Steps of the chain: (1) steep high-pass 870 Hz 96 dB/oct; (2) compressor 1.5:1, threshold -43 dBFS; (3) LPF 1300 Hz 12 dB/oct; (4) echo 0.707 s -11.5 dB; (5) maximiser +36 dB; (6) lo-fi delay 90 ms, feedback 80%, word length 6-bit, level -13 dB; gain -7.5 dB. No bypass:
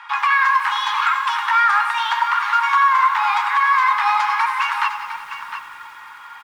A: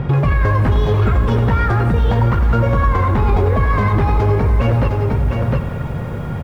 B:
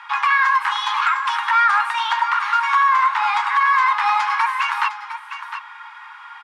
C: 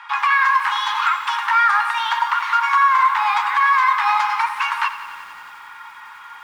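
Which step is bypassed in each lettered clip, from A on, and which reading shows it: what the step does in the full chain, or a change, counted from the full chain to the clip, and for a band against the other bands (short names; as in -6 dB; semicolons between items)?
1, crest factor change -4.0 dB; 6, crest factor change -2.5 dB; 4, momentary loudness spread change -7 LU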